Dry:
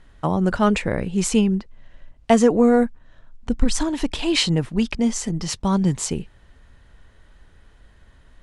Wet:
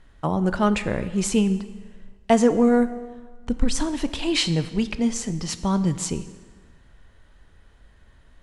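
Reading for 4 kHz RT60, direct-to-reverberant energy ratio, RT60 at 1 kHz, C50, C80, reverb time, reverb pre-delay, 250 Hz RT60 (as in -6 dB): 1.2 s, 11.5 dB, 1.5 s, 13.5 dB, 14.5 dB, 1.5 s, 12 ms, 1.4 s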